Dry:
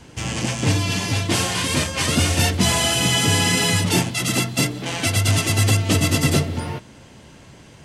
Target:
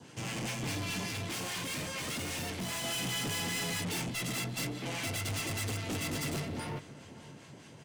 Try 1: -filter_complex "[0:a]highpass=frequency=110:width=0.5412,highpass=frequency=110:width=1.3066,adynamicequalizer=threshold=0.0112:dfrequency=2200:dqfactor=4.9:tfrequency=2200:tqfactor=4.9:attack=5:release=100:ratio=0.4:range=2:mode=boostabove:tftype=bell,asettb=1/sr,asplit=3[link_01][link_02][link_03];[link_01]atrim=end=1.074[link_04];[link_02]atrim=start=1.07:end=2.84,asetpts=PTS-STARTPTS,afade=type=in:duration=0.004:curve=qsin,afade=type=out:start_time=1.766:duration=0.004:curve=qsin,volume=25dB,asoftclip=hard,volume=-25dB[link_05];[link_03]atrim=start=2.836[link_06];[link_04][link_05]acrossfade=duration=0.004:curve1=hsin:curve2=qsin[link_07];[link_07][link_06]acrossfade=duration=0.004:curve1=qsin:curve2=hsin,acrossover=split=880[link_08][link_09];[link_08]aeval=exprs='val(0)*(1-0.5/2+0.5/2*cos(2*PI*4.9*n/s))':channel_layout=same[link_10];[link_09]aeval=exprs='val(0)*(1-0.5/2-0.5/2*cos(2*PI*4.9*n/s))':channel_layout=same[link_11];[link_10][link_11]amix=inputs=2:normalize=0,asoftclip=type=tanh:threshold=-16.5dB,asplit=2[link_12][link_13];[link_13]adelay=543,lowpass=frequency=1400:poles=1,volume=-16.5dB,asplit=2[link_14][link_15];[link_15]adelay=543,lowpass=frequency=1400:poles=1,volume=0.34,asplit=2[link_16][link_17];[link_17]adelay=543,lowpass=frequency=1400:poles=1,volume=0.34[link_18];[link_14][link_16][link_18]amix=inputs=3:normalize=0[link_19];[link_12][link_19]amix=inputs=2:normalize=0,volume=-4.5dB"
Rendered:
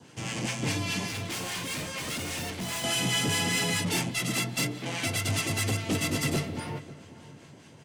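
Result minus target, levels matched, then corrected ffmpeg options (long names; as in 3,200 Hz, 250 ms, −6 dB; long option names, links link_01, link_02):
soft clipping: distortion −10 dB
-filter_complex "[0:a]highpass=frequency=110:width=0.5412,highpass=frequency=110:width=1.3066,adynamicequalizer=threshold=0.0112:dfrequency=2200:dqfactor=4.9:tfrequency=2200:tqfactor=4.9:attack=5:release=100:ratio=0.4:range=2:mode=boostabove:tftype=bell,asettb=1/sr,asplit=3[link_01][link_02][link_03];[link_01]atrim=end=1.074[link_04];[link_02]atrim=start=1.07:end=2.84,asetpts=PTS-STARTPTS,afade=type=in:duration=0.004:curve=qsin,afade=type=out:start_time=1.766:duration=0.004:curve=qsin,volume=25dB,asoftclip=hard,volume=-25dB[link_05];[link_03]atrim=start=2.836[link_06];[link_04][link_05]acrossfade=duration=0.004:curve1=hsin:curve2=qsin[link_07];[link_07][link_06]acrossfade=duration=0.004:curve1=qsin:curve2=hsin,acrossover=split=880[link_08][link_09];[link_08]aeval=exprs='val(0)*(1-0.5/2+0.5/2*cos(2*PI*4.9*n/s))':channel_layout=same[link_10];[link_09]aeval=exprs='val(0)*(1-0.5/2-0.5/2*cos(2*PI*4.9*n/s))':channel_layout=same[link_11];[link_10][link_11]amix=inputs=2:normalize=0,asoftclip=type=tanh:threshold=-28.5dB,asplit=2[link_12][link_13];[link_13]adelay=543,lowpass=frequency=1400:poles=1,volume=-16.5dB,asplit=2[link_14][link_15];[link_15]adelay=543,lowpass=frequency=1400:poles=1,volume=0.34,asplit=2[link_16][link_17];[link_17]adelay=543,lowpass=frequency=1400:poles=1,volume=0.34[link_18];[link_14][link_16][link_18]amix=inputs=3:normalize=0[link_19];[link_12][link_19]amix=inputs=2:normalize=0,volume=-4.5dB"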